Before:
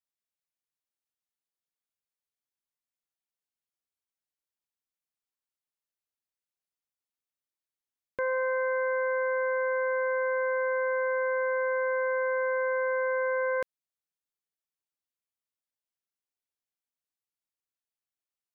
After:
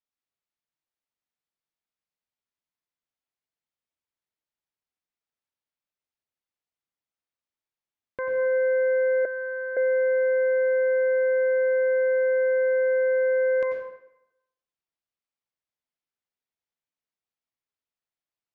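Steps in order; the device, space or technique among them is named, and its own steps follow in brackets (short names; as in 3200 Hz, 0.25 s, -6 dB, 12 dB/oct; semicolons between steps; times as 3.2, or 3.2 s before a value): bathroom (reverb RT60 0.85 s, pre-delay 86 ms, DRR 1.5 dB); 9.25–9.77 elliptic band-pass 600–1700 Hz; air absorption 110 m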